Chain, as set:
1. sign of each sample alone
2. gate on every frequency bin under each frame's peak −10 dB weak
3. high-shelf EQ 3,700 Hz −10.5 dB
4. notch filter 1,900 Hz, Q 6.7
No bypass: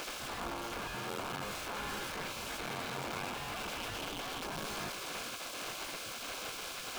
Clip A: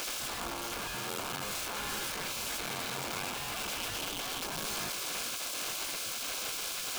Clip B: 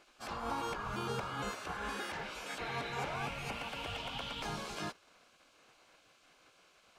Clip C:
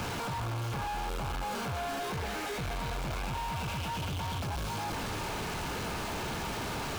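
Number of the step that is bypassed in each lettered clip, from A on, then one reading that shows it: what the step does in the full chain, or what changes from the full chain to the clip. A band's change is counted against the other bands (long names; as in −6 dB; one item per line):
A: 3, 8 kHz band +8.0 dB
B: 1, change in crest factor +3.5 dB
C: 2, change in crest factor −7.5 dB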